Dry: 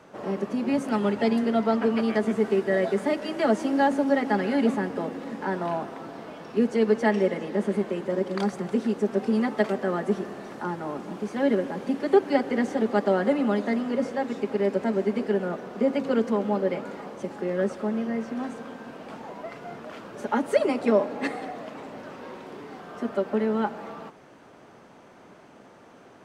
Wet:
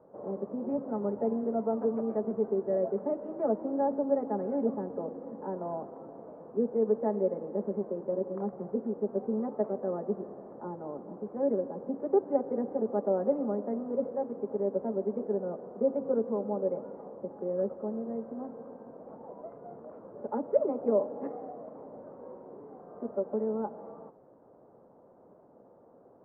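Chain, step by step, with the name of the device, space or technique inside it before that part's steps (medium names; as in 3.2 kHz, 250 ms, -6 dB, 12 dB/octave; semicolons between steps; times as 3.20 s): under water (low-pass 1 kHz 24 dB/octave; peaking EQ 510 Hz +7.5 dB 0.54 oct); trim -9 dB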